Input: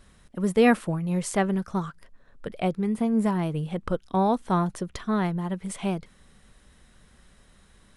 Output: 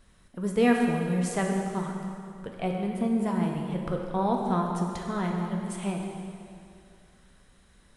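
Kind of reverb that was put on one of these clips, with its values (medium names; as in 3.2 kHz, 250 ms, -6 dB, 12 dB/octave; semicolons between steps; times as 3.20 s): plate-style reverb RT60 2.4 s, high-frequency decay 0.9×, DRR 0.5 dB; trim -5 dB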